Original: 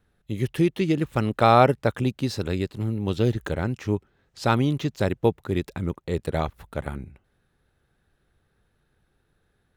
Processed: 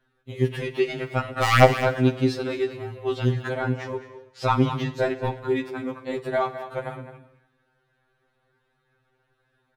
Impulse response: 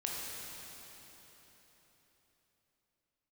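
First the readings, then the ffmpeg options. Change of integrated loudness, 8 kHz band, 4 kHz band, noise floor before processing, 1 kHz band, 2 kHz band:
0.0 dB, +2.0 dB, +2.0 dB, -71 dBFS, -0.5 dB, +4.5 dB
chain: -filter_complex "[0:a]aeval=exprs='(mod(1.78*val(0)+1,2)-1)/1.78':c=same,asplit=2[s0][s1];[s1]adelay=209.9,volume=0.224,highshelf=f=4000:g=-4.72[s2];[s0][s2]amix=inputs=2:normalize=0,asplit=2[s3][s4];[s4]highpass=f=720:p=1,volume=3.98,asoftclip=type=tanh:threshold=0.631[s5];[s3][s5]amix=inputs=2:normalize=0,lowpass=f=1700:p=1,volume=0.501,asplit=2[s6][s7];[1:a]atrim=start_sample=2205,afade=t=out:st=0.37:d=0.01,atrim=end_sample=16758,adelay=49[s8];[s7][s8]afir=irnorm=-1:irlink=0,volume=0.178[s9];[s6][s9]amix=inputs=2:normalize=0,afftfilt=real='re*2.45*eq(mod(b,6),0)':imag='im*2.45*eq(mod(b,6),0)':win_size=2048:overlap=0.75,volume=1.19"

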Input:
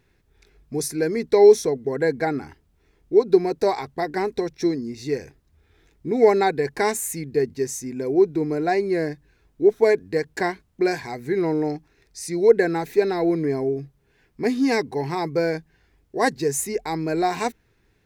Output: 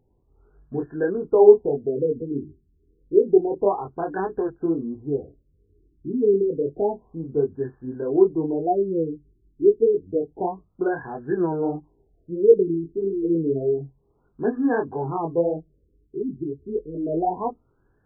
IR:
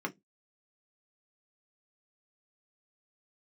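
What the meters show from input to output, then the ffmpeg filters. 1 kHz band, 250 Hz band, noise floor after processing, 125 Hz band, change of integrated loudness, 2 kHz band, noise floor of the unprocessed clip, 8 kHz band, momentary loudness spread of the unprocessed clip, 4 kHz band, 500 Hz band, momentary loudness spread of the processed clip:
-3.0 dB, -0.5 dB, -66 dBFS, -1.5 dB, -1.0 dB, -10.5 dB, -64 dBFS, under -40 dB, 11 LU, under -40 dB, -0.5 dB, 13 LU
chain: -filter_complex "[0:a]flanger=delay=19.5:depth=5.1:speed=1.6,asplit=2[s0][s1];[1:a]atrim=start_sample=2205,asetrate=41895,aresample=44100[s2];[s1][s2]afir=irnorm=-1:irlink=0,volume=0.0944[s3];[s0][s3]amix=inputs=2:normalize=0,afftfilt=real='re*lt(b*sr/1024,420*pow(1800/420,0.5+0.5*sin(2*PI*0.29*pts/sr)))':imag='im*lt(b*sr/1024,420*pow(1800/420,0.5+0.5*sin(2*PI*0.29*pts/sr)))':win_size=1024:overlap=0.75,volume=1.26"

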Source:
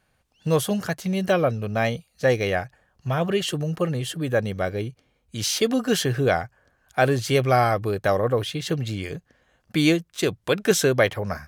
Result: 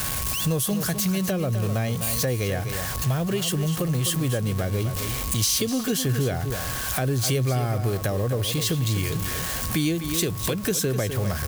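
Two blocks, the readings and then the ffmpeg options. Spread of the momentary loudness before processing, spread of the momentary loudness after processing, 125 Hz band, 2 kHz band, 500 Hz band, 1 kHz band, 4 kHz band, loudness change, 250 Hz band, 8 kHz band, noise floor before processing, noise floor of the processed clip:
10 LU, 3 LU, +3.0 dB, -5.0 dB, -6.0 dB, -7.0 dB, +1.0 dB, -1.0 dB, -1.0 dB, +6.0 dB, -68 dBFS, -29 dBFS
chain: -filter_complex "[0:a]aeval=exprs='val(0)+0.5*0.0335*sgn(val(0))':c=same,aeval=exprs='val(0)+0.0112*sin(2*PI*1100*n/s)':c=same,acrossover=split=460[s0][s1];[s1]acompressor=threshold=0.0447:ratio=4[s2];[s0][s2]amix=inputs=2:normalize=0,aecho=1:1:253:0.299,acompressor=threshold=0.0316:ratio=2,equalizer=f=76:t=o:w=2.8:g=8,crystalizer=i=3:c=0"

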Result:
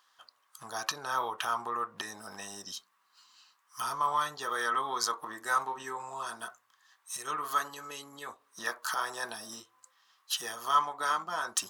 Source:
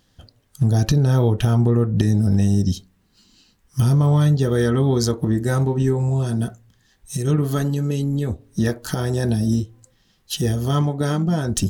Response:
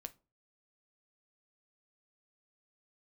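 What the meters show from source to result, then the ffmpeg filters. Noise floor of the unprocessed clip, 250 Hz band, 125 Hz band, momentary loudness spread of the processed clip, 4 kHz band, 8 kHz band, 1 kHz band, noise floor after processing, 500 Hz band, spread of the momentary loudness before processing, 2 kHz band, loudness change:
-62 dBFS, -30.5 dB, under -40 dB, 14 LU, -5.0 dB, -5.5 dB, +2.5 dB, -72 dBFS, -18.5 dB, 8 LU, -0.5 dB, -13.5 dB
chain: -af "highpass=f=1100:t=q:w=5.3,volume=0.531"

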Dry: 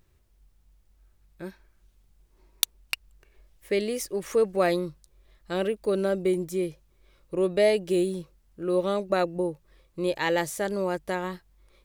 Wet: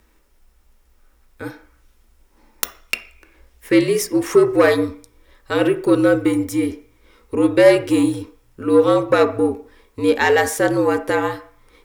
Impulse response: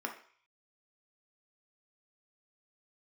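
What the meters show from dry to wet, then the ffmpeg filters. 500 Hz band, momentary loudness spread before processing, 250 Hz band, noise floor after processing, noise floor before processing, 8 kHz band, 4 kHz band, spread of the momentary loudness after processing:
+9.0 dB, 14 LU, +12.5 dB, -57 dBFS, -64 dBFS, +7.0 dB, +5.0 dB, 14 LU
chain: -filter_complex "[0:a]aeval=exprs='0.794*sin(PI/2*3.98*val(0)/0.794)':c=same,afreqshift=-67,asplit=2[s0][s1];[1:a]atrim=start_sample=2205[s2];[s1][s2]afir=irnorm=-1:irlink=0,volume=0.891[s3];[s0][s3]amix=inputs=2:normalize=0,volume=0.335"

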